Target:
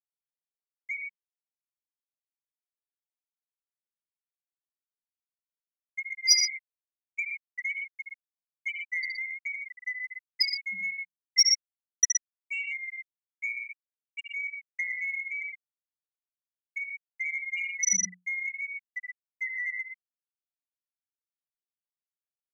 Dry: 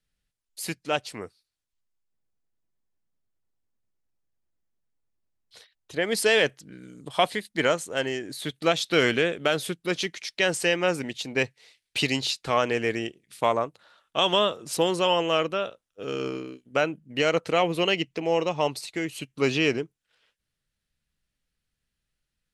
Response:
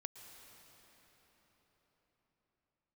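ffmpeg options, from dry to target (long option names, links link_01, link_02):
-af "afftfilt=real='real(if(lt(b,272),68*(eq(floor(b/68),0)*2+eq(floor(b/68),1)*0+eq(floor(b/68),2)*3+eq(floor(b/68),3)*1)+mod(b,68),b),0)':imag='imag(if(lt(b,272),68*(eq(floor(b/68),0)*2+eq(floor(b/68),1)*0+eq(floor(b/68),2)*3+eq(floor(b/68),3)*1)+mod(b,68),b),0)':win_size=2048:overlap=0.75,equalizer=frequency=240:width_type=o:width=2.7:gain=-7.5,aphaser=in_gain=1:out_gain=1:delay=1.5:decay=0.23:speed=0.2:type=sinusoidal,bandreject=frequency=2400:width=13,afftfilt=real='re*gte(hypot(re,im),0.501)':imag='im*gte(hypot(re,im),0.501)':win_size=1024:overlap=0.75,aecho=1:1:69.97|119.5:0.447|0.447,afreqshift=180,acompressor=threshold=-36dB:ratio=3,aexciter=amount=13.9:drive=9.7:freq=5700,volume=2dB"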